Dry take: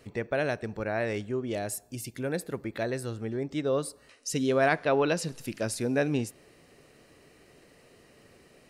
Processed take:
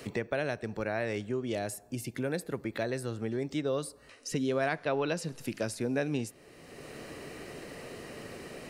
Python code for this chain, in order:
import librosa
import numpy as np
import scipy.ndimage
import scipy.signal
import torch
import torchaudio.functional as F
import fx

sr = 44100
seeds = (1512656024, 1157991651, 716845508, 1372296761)

y = fx.band_squash(x, sr, depth_pct=70)
y = F.gain(torch.from_numpy(y), -3.0).numpy()